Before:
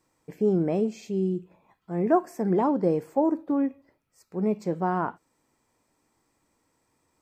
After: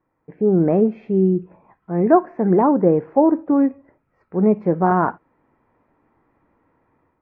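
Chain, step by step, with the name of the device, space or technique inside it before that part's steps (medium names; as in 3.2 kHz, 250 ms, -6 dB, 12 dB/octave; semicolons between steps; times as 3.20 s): action camera in a waterproof case (low-pass 1.9 kHz 24 dB/octave; level rider gain up to 10 dB; AAC 48 kbps 44.1 kHz)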